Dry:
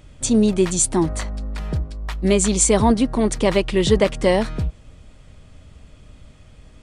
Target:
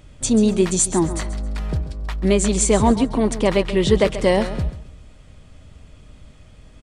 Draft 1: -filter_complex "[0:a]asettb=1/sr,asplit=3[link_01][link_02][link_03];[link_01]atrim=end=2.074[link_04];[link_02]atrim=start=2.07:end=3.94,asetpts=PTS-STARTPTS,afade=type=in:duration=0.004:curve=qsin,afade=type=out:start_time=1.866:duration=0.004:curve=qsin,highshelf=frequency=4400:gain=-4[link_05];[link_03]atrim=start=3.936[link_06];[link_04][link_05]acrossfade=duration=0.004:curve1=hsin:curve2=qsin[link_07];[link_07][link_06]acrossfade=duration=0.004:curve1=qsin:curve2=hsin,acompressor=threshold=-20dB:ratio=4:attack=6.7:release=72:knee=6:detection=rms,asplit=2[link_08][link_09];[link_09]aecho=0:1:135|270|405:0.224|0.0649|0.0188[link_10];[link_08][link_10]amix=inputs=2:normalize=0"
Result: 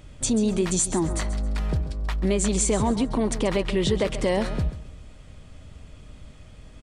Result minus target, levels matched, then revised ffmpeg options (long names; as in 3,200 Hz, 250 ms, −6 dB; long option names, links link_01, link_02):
downward compressor: peak gain reduction +9.5 dB
-filter_complex "[0:a]asettb=1/sr,asplit=3[link_01][link_02][link_03];[link_01]atrim=end=2.074[link_04];[link_02]atrim=start=2.07:end=3.94,asetpts=PTS-STARTPTS,afade=type=in:duration=0.004:curve=qsin,afade=type=out:start_time=1.866:duration=0.004:curve=qsin,highshelf=frequency=4400:gain=-4[link_05];[link_03]atrim=start=3.936[link_06];[link_04][link_05]acrossfade=duration=0.004:curve1=hsin:curve2=qsin[link_07];[link_07][link_06]acrossfade=duration=0.004:curve1=qsin:curve2=hsin,asplit=2[link_08][link_09];[link_09]aecho=0:1:135|270|405:0.224|0.0649|0.0188[link_10];[link_08][link_10]amix=inputs=2:normalize=0"